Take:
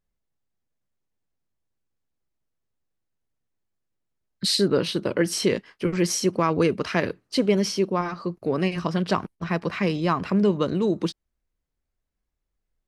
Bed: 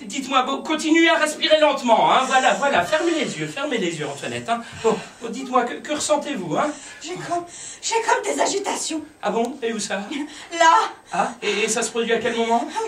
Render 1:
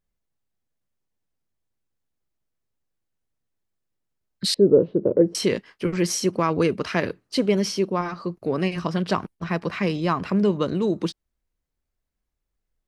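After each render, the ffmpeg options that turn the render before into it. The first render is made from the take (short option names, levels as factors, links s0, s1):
-filter_complex "[0:a]asettb=1/sr,asplit=3[s0][s1][s2];[s0]atrim=end=4.544[s3];[s1]atrim=start=4.54:end=5.35,asetpts=PTS-STARTPTS,afade=t=in:d=0.004:c=qsin,afade=t=out:st=0.806:d=0.004:c=qsin,lowpass=f=480:t=q:w=2.4[s4];[s2]atrim=start=5.346[s5];[s3][s4]acrossfade=d=0.004:c1=hsin:c2=qsin[s6];[s6][s5]acrossfade=d=0.004:c1=qsin:c2=hsin"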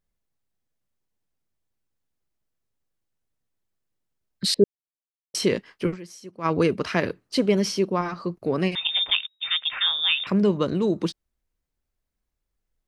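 -filter_complex "[0:a]asettb=1/sr,asplit=3[s0][s1][s2];[s0]atrim=end=8.754[s3];[s1]atrim=start=8.75:end=10.27,asetpts=PTS-STARTPTS,afade=t=in:d=0.004:c=qsin,afade=t=out:st=1.516:d=0.004:c=qsin,lowpass=f=3200:t=q:w=0.5098,lowpass=f=3200:t=q:w=0.6013,lowpass=f=3200:t=q:w=0.9,lowpass=f=3200:t=q:w=2.563,afreqshift=-3800[s4];[s2]atrim=start=10.266[s5];[s3][s4]acrossfade=d=0.004:c1=hsin:c2=qsin[s6];[s6][s5]acrossfade=d=0.004:c1=qsin:c2=hsin,asplit=5[s7][s8][s9][s10][s11];[s7]atrim=end=4.64,asetpts=PTS-STARTPTS,afade=t=out:st=4.636:d=0.004:c=hsin[s12];[s8]atrim=start=4.64:end=5.34,asetpts=PTS-STARTPTS,volume=0[s13];[s9]atrim=start=5.34:end=6.16,asetpts=PTS-STARTPTS,afade=t=in:d=0.004:c=hsin,afade=t=out:st=0.58:d=0.24:c=exp:silence=0.112202[s14];[s10]atrim=start=6.16:end=6.22,asetpts=PTS-STARTPTS,volume=0.112[s15];[s11]atrim=start=6.22,asetpts=PTS-STARTPTS,afade=t=in:d=0.24:c=exp:silence=0.112202[s16];[s12][s13][s14][s15][s16]concat=n=5:v=0:a=1"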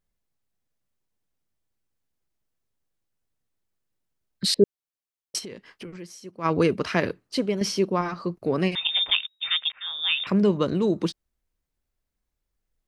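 -filter_complex "[0:a]asplit=3[s0][s1][s2];[s0]afade=t=out:st=5.38:d=0.02[s3];[s1]acompressor=threshold=0.0141:ratio=5:attack=3.2:release=140:knee=1:detection=peak,afade=t=in:st=5.38:d=0.02,afade=t=out:st=5.94:d=0.02[s4];[s2]afade=t=in:st=5.94:d=0.02[s5];[s3][s4][s5]amix=inputs=3:normalize=0,asplit=3[s6][s7][s8];[s6]atrim=end=7.61,asetpts=PTS-STARTPTS,afade=t=out:st=6.97:d=0.64:c=qsin:silence=0.375837[s9];[s7]atrim=start=7.61:end=9.72,asetpts=PTS-STARTPTS,afade=t=in:d=0.004:c=hsin:silence=0.375837,afade=t=out:st=2.106:d=0.004:c=hsin[s10];[s8]atrim=start=9.72,asetpts=PTS-STARTPTS,afade=t=in:d=0.49[s11];[s9][s10][s11]concat=n=3:v=0:a=1"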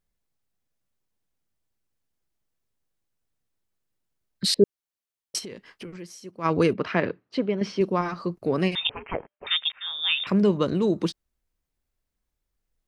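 -filter_complex "[0:a]asettb=1/sr,asplit=3[s0][s1][s2];[s0]atrim=end=6.734[s3];[s1]atrim=start=6.73:end=7.81,asetpts=PTS-STARTPTS,afade=t=in:d=0.004:c=qsin,afade=t=out:st=1.076:d=0.004:c=qsin,highpass=110,lowpass=2800[s4];[s2]atrim=start=7.806[s5];[s3][s4]acrossfade=d=0.004:c1=hsin:c2=qsin[s6];[s6][s5]acrossfade=d=0.004:c1=qsin:c2=hsin,asettb=1/sr,asplit=3[s7][s8][s9];[s7]atrim=end=8.894[s10];[s8]atrim=start=8.89:end=9.47,asetpts=PTS-STARTPTS,afade=t=in:d=0.004:c=qsin,afade=t=out:st=0.576:d=0.004:c=qsin,lowpass=f=2700:t=q:w=0.5098,lowpass=f=2700:t=q:w=0.6013,lowpass=f=2700:t=q:w=0.9,lowpass=f=2700:t=q:w=2.563,afreqshift=-3200[s11];[s9]atrim=start=9.466[s12];[s10][s11]acrossfade=d=0.004:c1=hsin:c2=qsin[s13];[s13][s12]acrossfade=d=0.004:c1=qsin:c2=hsin"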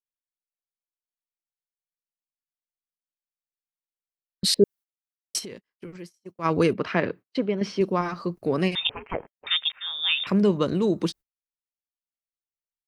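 -af "agate=range=0.0178:threshold=0.01:ratio=16:detection=peak,highshelf=f=11000:g=9"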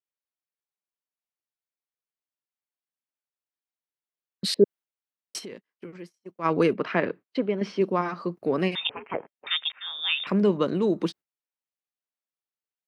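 -af "highpass=180,bass=f=250:g=0,treble=f=4000:g=-9"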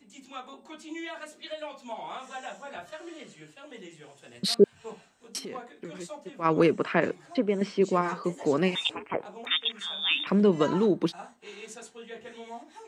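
-filter_complex "[1:a]volume=0.075[s0];[0:a][s0]amix=inputs=2:normalize=0"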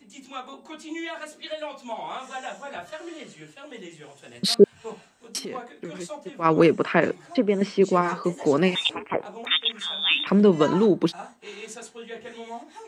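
-af "volume=1.68"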